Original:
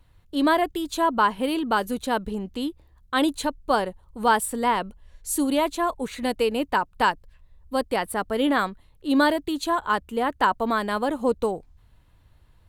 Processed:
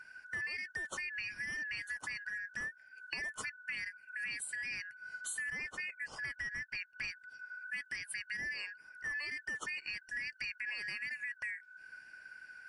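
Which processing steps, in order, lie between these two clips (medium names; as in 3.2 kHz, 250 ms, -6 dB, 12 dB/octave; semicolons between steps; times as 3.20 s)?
four frequency bands reordered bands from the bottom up 3142; 5.50–7.08 s: treble shelf 2.7 kHz -8.5 dB; peak limiter -18.5 dBFS, peak gain reduction 10.5 dB; compression 4:1, threshold -44 dBFS, peak gain reduction 18 dB; trim +3 dB; MP3 48 kbps 44.1 kHz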